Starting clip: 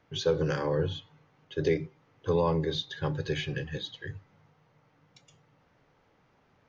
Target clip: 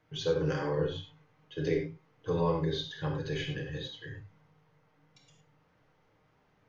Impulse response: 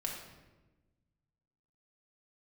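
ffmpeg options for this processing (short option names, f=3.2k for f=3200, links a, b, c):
-filter_complex "[1:a]atrim=start_sample=2205,atrim=end_sample=3528,asetrate=30429,aresample=44100[a];[0:a][a]afir=irnorm=-1:irlink=0,volume=-5.5dB"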